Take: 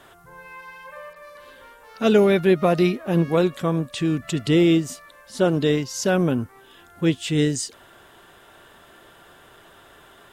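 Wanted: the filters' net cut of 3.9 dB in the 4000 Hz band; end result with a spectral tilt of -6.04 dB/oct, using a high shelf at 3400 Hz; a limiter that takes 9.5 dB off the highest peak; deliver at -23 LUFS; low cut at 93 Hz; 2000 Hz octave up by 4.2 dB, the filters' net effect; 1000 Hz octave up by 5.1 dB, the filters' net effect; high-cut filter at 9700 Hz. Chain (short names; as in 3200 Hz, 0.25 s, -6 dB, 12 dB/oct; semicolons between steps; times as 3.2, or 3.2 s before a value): HPF 93 Hz; LPF 9700 Hz; bell 1000 Hz +6.5 dB; bell 2000 Hz +6 dB; high shelf 3400 Hz -5.5 dB; bell 4000 Hz -4.5 dB; gain +1.5 dB; limiter -10.5 dBFS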